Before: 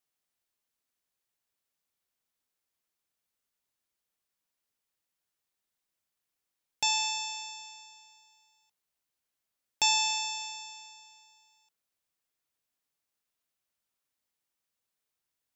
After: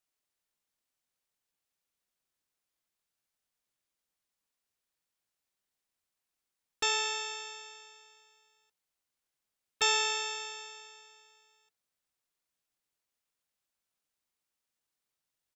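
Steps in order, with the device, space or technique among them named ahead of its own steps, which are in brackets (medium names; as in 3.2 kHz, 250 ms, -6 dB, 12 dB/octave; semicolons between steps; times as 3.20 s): octave pedal (harmony voices -12 st -3 dB); trim -3.5 dB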